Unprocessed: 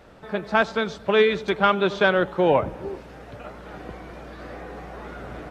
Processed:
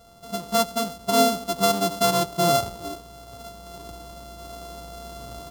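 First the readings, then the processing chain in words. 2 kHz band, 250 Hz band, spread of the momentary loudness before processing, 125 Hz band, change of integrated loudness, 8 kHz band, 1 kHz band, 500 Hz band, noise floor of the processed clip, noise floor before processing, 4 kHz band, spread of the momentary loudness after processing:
-10.5 dB, -0.5 dB, 20 LU, 0.0 dB, -1.0 dB, n/a, +1.0 dB, -3.0 dB, -45 dBFS, -44 dBFS, +4.0 dB, 20 LU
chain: sample sorter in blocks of 64 samples; band shelf 2000 Hz -10.5 dB 1 oct; harmonic-percussive split percussive -9 dB

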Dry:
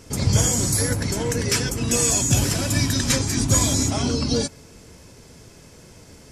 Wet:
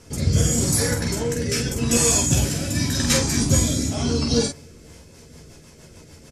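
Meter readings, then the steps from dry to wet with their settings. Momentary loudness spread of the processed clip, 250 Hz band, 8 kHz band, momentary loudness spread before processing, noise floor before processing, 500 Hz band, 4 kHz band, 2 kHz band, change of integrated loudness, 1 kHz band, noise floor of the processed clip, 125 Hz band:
6 LU, +1.0 dB, -0.5 dB, 6 LU, -47 dBFS, +1.5 dB, 0.0 dB, -0.5 dB, 0.0 dB, -2.0 dB, -47 dBFS, 0.0 dB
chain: early reflections 13 ms -4.5 dB, 47 ms -4 dB; rotary speaker horn 0.85 Hz, later 6.7 Hz, at 4.52

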